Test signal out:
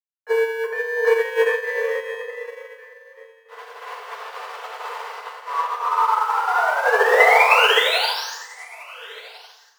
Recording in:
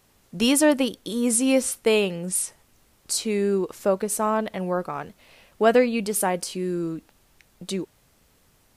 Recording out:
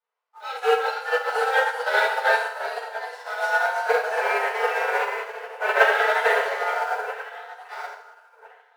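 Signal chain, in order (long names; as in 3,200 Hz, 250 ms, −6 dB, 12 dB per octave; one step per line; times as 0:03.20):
one-sided soft clipper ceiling −16 dBFS
low-pass filter 2,400 Hz 12 dB per octave
dynamic equaliser 260 Hz, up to −5 dB, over −34 dBFS, Q 0.88
in parallel at −9 dB: comparator with hysteresis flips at −35 dBFS
on the sum: ring modulation 680 Hz
frequency shifter +380 Hz
on a send: delay that swaps between a low-pass and a high-pass 699 ms, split 970 Hz, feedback 60%, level −4 dB
on the sum: delay with pitch and tempo change per echo 472 ms, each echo +1 semitone, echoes 3
feedback delay network reverb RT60 1.2 s, high-frequency decay 0.95×, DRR −9 dB
expander for the loud parts 2.5 to 1, over −30 dBFS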